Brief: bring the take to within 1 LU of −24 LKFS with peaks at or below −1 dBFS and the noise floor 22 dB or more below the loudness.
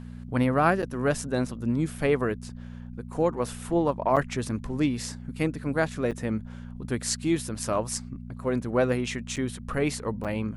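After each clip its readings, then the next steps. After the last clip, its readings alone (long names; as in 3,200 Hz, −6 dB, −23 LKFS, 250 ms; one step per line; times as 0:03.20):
number of dropouts 5; longest dropout 7.1 ms; mains hum 60 Hz; hum harmonics up to 240 Hz; level of the hum −37 dBFS; integrated loudness −28.0 LKFS; sample peak −9.5 dBFS; target loudness −24.0 LKFS
→ repair the gap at 0:00.82/0:04.16/0:06.11/0:09.36/0:10.24, 7.1 ms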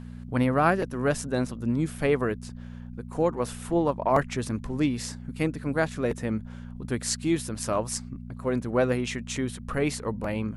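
number of dropouts 0; mains hum 60 Hz; hum harmonics up to 240 Hz; level of the hum −37 dBFS
→ hum removal 60 Hz, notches 4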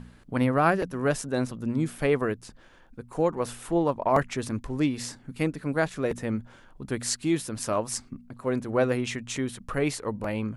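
mains hum none found; integrated loudness −28.0 LKFS; sample peak −10.0 dBFS; target loudness −24.0 LKFS
→ level +4 dB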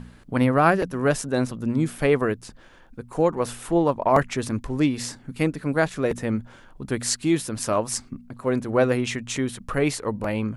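integrated loudness −24.0 LKFS; sample peak −6.0 dBFS; background noise floor −50 dBFS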